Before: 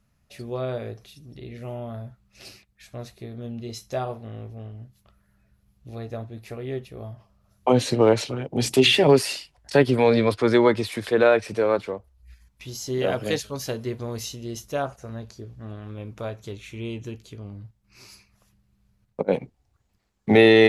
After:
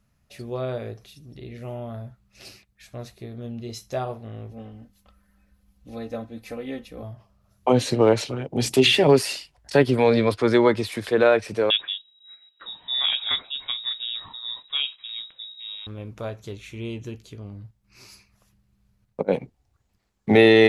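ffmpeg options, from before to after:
-filter_complex "[0:a]asettb=1/sr,asplit=3[a][b][c];[a]atrim=end=4.514[d];[b]atrim=start=4.51:end=7.03,asetpts=PTS-STARTPTS,afade=t=in:d=0.004:c=qsin,afade=t=out:st=2.516:d=0.004:c=qsin,aecho=1:1:3.9:0.82,atrim=end_sample=111132[e];[c]atrim=start=7.026[f];[d][e]acrossfade=d=0.004:c1=hsin:c2=qsin[g];[g][f]acrossfade=d=0.004:c1=qsin:c2=hsin,asettb=1/sr,asplit=3[h][i][j];[h]atrim=end=11.704[k];[i]atrim=start=11.7:end=15.87,asetpts=PTS-STARTPTS,afade=t=in:d=0.004:c=qsin,afade=t=out:st=4.166:d=0.004:c=qsin,lowpass=f=3.3k:t=q:w=0.5098,lowpass=f=3.3k:t=q:w=0.6013,lowpass=f=3.3k:t=q:w=0.9,lowpass=f=3.3k:t=q:w=2.563,afreqshift=-3900[l];[j]atrim=start=15.866[m];[k][l]acrossfade=d=0.004:c1=hsin:c2=qsin[n];[n][m]acrossfade=d=0.004:c1=qsin:c2=hsin"

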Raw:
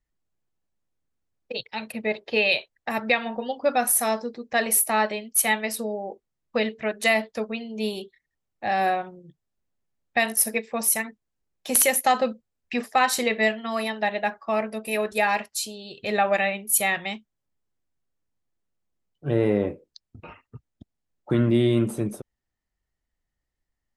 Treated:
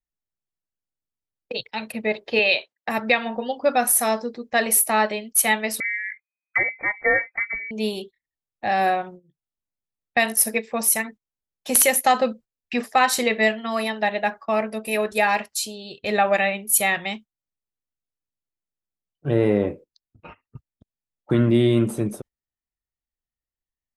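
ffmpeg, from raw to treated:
-filter_complex "[0:a]asettb=1/sr,asplit=3[a][b][c];[a]atrim=end=2.394[d];[b]atrim=start=2.39:end=2.89,asetpts=PTS-STARTPTS,afade=t=in:d=0.004:c=qsin,afade=t=out:st=0.496:d=0.004:c=qsin,highpass=220,lowpass=6.2k[e];[c]atrim=start=2.886[f];[d][e]acrossfade=d=0.004:c1=hsin:c2=qsin[g];[g][f]acrossfade=d=0.004:c1=qsin:c2=hsin,asettb=1/sr,asplit=3[h][i][j];[h]atrim=end=5.804[k];[i]atrim=start=5.8:end=7.71,asetpts=PTS-STARTPTS,afade=t=in:d=0.004:c=qsin,afade=t=out:st=1.906:d=0.004:c=qsin,lowpass=f=2.1k:t=q:w=0.5098,lowpass=f=2.1k:t=q:w=0.6013,lowpass=f=2.1k:t=q:w=0.9,lowpass=f=2.1k:t=q:w=2.563,afreqshift=-2500[l];[j]atrim=start=7.706[m];[k][l]acrossfade=d=0.004:c1=hsin:c2=qsin[n];[n][m]acrossfade=d=0.004:c1=qsin:c2=hsin,agate=range=-15dB:threshold=-42dB:ratio=16:detection=peak,volume=2.5dB"

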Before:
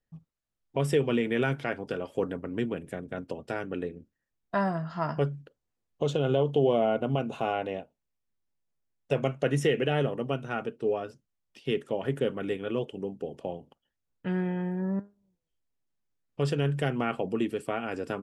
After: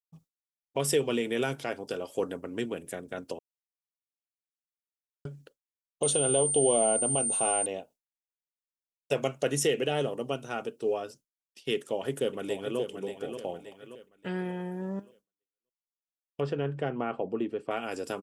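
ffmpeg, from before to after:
-filter_complex "[0:a]asettb=1/sr,asplit=3[a][b][c];[a]atrim=end=6.034[d];[b]atrim=start=6.03:end=7.66,asetpts=PTS-STARTPTS,afade=t=in:d=0.004:c=qsin,afade=t=out:st=1.626:d=0.004:c=qsin,aeval=exprs='val(0)+0.0112*sin(2*PI*8900*n/s)':c=same[e];[c]atrim=start=7.656[f];[d][e]acrossfade=d=0.004:c1=hsin:c2=qsin[g];[g][f]acrossfade=d=0.004:c1=qsin:c2=hsin,asplit=2[h][i];[i]afade=t=in:st=11.75:d=0.01,afade=t=out:st=12.79:d=0.01,aecho=0:1:580|1160|1740|2320|2900:0.375837|0.169127|0.0761071|0.0342482|0.0154117[j];[h][j]amix=inputs=2:normalize=0,asettb=1/sr,asplit=3[k][l][m];[k]atrim=end=16.404[n];[l]atrim=start=16.4:end=17.71,asetpts=PTS-STARTPTS,afade=t=in:d=0.004:c=qsin,afade=t=out:st=1.306:d=0.004:c=qsin,lowpass=1.7k[o];[m]atrim=start=17.706[p];[n][o]acrossfade=d=0.004:c1=hsin:c2=qsin[q];[q][p]acrossfade=d=0.004:c1=qsin:c2=hsin,asplit=3[r][s][t];[r]atrim=end=3.39,asetpts=PTS-STARTPTS,afade=t=out:st=3.386:d=0.004:c=hsin[u];[s]atrim=start=3.39:end=5.25,asetpts=PTS-STARTPTS,volume=0[v];[t]atrim=start=5.25,asetpts=PTS-STARTPTS,afade=t=in:d=0.004:c=hsin[w];[u][v][w]concat=n=3:v=0:a=1,adynamicequalizer=threshold=0.00355:dfrequency=1800:dqfactor=1.3:tfrequency=1800:tqfactor=1.3:attack=5:release=100:ratio=0.375:range=3.5:mode=cutabove:tftype=bell,agate=range=-33dB:threshold=-48dB:ratio=3:detection=peak,bass=f=250:g=-8,treble=f=4k:g=13"

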